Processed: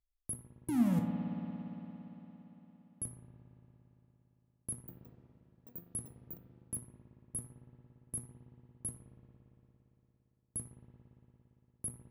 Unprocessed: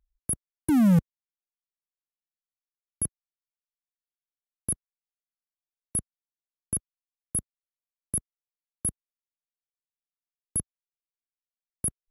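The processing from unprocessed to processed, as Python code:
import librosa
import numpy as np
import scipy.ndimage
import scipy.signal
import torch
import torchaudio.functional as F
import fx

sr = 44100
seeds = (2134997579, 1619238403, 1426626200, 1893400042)

y = fx.notch(x, sr, hz=1500.0, q=8.6)
y = fx.comb_fb(y, sr, f0_hz=120.0, decay_s=0.33, harmonics='all', damping=0.0, mix_pct=80)
y = fx.rev_spring(y, sr, rt60_s=4.0, pass_ms=(57,), chirp_ms=70, drr_db=2.5)
y = fx.echo_pitch(y, sr, ms=169, semitones=6, count=2, db_per_echo=-6.0, at=(4.71, 7.36))
y = y * 10.0 ** (-2.0 / 20.0)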